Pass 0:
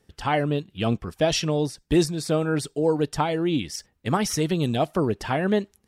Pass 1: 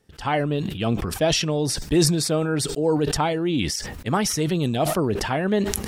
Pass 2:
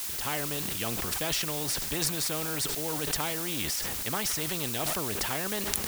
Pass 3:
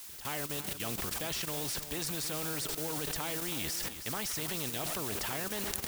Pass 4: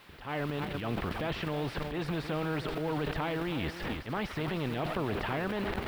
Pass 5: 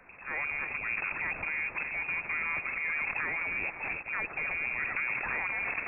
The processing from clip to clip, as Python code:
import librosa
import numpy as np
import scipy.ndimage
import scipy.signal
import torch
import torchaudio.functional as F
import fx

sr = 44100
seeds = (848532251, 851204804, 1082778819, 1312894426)

y1 = fx.sustainer(x, sr, db_per_s=38.0)
y2 = fx.dmg_noise_colour(y1, sr, seeds[0], colour='blue', level_db=-37.0)
y2 = fx.spectral_comp(y2, sr, ratio=2.0)
y2 = F.gain(torch.from_numpy(y2), -2.0).numpy()
y3 = fx.level_steps(y2, sr, step_db=11)
y3 = y3 + 10.0 ** (-11.5 / 20.0) * np.pad(y3, (int(320 * sr / 1000.0), 0))[:len(y3)]
y3 = F.gain(torch.from_numpy(y3), -3.0).numpy()
y4 = fx.transient(y3, sr, attack_db=-11, sustain_db=9)
y4 = fx.air_absorb(y4, sr, metres=450.0)
y4 = F.gain(torch.from_numpy(y4), 8.0).numpy()
y5 = fx.cvsd(y4, sr, bps=32000)
y5 = fx.freq_invert(y5, sr, carrier_hz=2600)